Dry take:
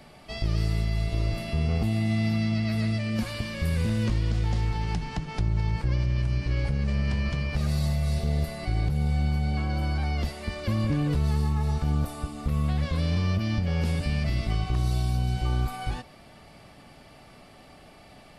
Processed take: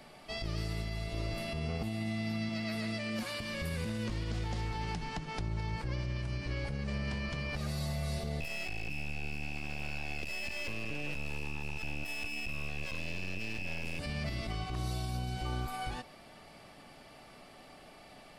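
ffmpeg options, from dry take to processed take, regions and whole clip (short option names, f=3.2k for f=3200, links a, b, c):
-filter_complex "[0:a]asettb=1/sr,asplit=3[a][b][c];[a]atrim=end=2.494[d];[b]atrim=start=2.49:end=3.4,asetpts=PTS-STARTPTS,afade=t=in:d=0.004:c=qsin,afade=t=out:st=0.906:d=0.004:c=qsin,highpass=f=200:p=1,asoftclip=type=hard:threshold=-23dB[e];[c]atrim=start=3.396[f];[d][e]acrossfade=d=0.004:c1=hsin:c2=qsin[g];[g][f]acrossfade=d=0.004:c1=qsin:c2=hsin,asettb=1/sr,asplit=3[h][i][j];[h]atrim=end=8.404[k];[i]atrim=start=8.4:end=13.99,asetpts=PTS-STARTPTS,afade=t=in:d=0.004:c=qsin,afade=t=out:st=5.586:d=0.004:c=qsin,bandreject=f=1.2k:w=5.6,aeval=exprs='val(0)+0.0316*sin(2*PI*2600*n/s)':c=same,aeval=exprs='max(val(0),0)':c=same[l];[j]atrim=start=13.986[m];[k][l]acrossfade=d=0.004:c1=hsin:c2=qsin[n];[n][m]acrossfade=d=0.004:c1=qsin:c2=hsin,equalizer=f=73:t=o:w=2.5:g=-8.5,alimiter=level_in=1dB:limit=-24dB:level=0:latency=1:release=94,volume=-1dB,volume=-2dB"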